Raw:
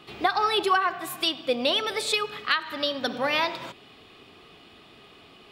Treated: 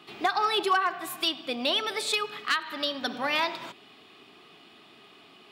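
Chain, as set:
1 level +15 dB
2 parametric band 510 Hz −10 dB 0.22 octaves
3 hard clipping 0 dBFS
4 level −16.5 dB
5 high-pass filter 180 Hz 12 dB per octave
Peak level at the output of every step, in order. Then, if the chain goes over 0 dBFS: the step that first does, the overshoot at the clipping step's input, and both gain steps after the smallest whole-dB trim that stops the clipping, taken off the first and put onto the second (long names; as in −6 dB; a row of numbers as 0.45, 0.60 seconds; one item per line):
+6.0, +6.0, 0.0, −16.5, −13.5 dBFS
step 1, 6.0 dB
step 1 +9 dB, step 4 −10.5 dB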